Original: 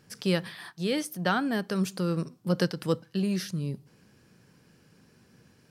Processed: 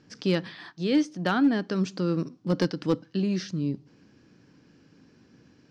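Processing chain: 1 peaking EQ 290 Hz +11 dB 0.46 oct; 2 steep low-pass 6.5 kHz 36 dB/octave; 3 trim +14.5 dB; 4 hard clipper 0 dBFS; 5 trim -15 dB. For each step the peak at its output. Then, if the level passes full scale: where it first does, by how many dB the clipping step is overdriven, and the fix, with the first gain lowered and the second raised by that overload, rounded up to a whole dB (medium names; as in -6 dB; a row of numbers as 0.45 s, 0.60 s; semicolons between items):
-10.0 dBFS, -10.0 dBFS, +4.5 dBFS, 0.0 dBFS, -15.0 dBFS; step 3, 4.5 dB; step 3 +9.5 dB, step 5 -10 dB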